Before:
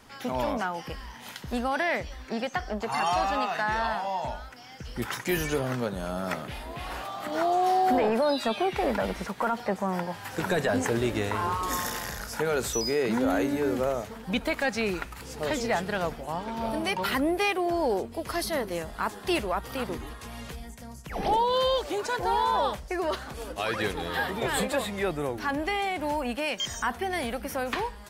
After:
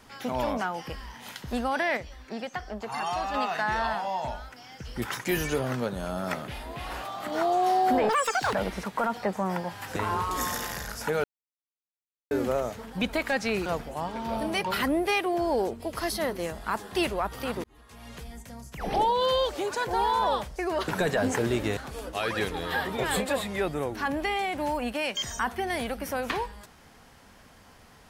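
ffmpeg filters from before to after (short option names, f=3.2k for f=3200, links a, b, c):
-filter_complex "[0:a]asplit=12[a][b][c][d][e][f][g][h][i][j][k][l];[a]atrim=end=1.972[m];[b]atrim=start=1.968:end=3.342,asetpts=PTS-STARTPTS,volume=-4.5dB[n];[c]atrim=start=3.338:end=8.094[o];[d]atrim=start=8.09:end=8.96,asetpts=PTS-STARTPTS,asetrate=87318,aresample=44100,atrim=end_sample=19377,asetpts=PTS-STARTPTS[p];[e]atrim=start=8.956:end=10.392[q];[f]atrim=start=11.278:end=12.56,asetpts=PTS-STARTPTS,afade=t=out:st=1.278:d=0.004:c=hsin[r];[g]atrim=start=12.56:end=13.63,asetpts=PTS-STARTPTS,volume=0[s];[h]atrim=start=13.63:end=14.982,asetpts=PTS-STARTPTS,afade=t=in:d=0.004:c=hsin[t];[i]atrim=start=15.978:end=19.96,asetpts=PTS-STARTPTS,afade=t=out:st=3.978:d=0.004:c=hsin[u];[j]atrim=start=19.96:end=23.202,asetpts=PTS-STARTPTS,afade=t=in:d=0.75[v];[k]atrim=start=10.388:end=11.282[w];[l]atrim=start=23.198[x];[m][n]acrossfade=d=0.004:c1=hsin:c2=hsin[y];[y][o]acrossfade=d=0.004:c1=hsin:c2=hsin[z];[z][p]acrossfade=d=0.004:c1=hsin:c2=hsin[aa];[aa][q]acrossfade=d=0.004:c1=hsin:c2=hsin[ab];[r][s][t]concat=n=3:v=0:a=1[ac];[ab][ac]acrossfade=d=0.004:c1=hsin:c2=hsin[ad];[u][v]concat=n=2:v=0:a=1[ae];[ad][ae]acrossfade=d=0.004:c1=hsin:c2=hsin[af];[af][w]acrossfade=d=0.004:c1=hsin:c2=hsin[ag];[ag][x]acrossfade=d=0.004:c1=hsin:c2=hsin"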